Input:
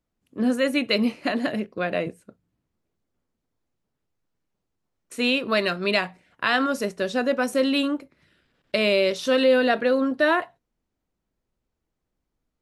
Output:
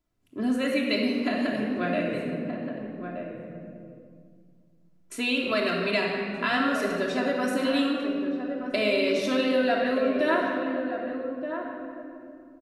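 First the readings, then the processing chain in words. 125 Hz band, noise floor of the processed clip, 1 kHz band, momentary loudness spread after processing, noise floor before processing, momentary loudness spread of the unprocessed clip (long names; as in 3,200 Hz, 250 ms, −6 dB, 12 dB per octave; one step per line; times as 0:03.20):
0.0 dB, −58 dBFS, −2.0 dB, 15 LU, −81 dBFS, 9 LU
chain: rectangular room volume 2,900 cubic metres, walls mixed, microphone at 3 metres
downward compressor 1.5 to 1, threshold −33 dBFS, peak gain reduction 8 dB
slap from a distant wall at 210 metres, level −7 dB
level −1 dB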